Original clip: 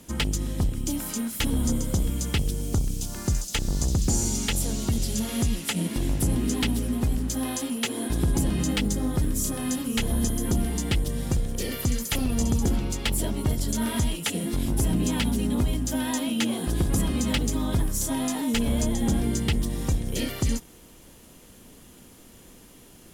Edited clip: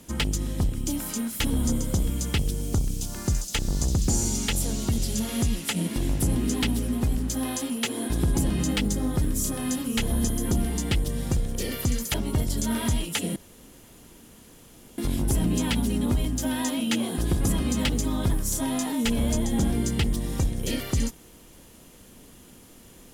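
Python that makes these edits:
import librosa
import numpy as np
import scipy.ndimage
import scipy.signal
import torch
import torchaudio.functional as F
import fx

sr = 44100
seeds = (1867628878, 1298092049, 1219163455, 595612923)

y = fx.edit(x, sr, fx.cut(start_s=12.14, length_s=1.11),
    fx.insert_room_tone(at_s=14.47, length_s=1.62), tone=tone)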